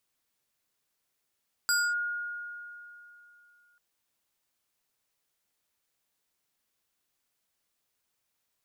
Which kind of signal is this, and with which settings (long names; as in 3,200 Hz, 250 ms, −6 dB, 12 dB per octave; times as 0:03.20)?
two-operator FM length 2.09 s, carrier 1,430 Hz, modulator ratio 4.38, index 1.2, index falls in 0.25 s linear, decay 2.98 s, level −22 dB